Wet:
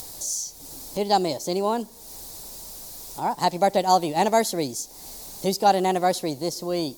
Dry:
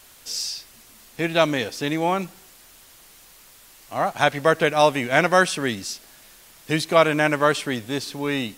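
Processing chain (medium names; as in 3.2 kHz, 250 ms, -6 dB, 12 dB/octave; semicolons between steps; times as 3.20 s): upward compressor, threshold -27 dBFS; high-order bell 1.6 kHz -14 dB; tape speed +23%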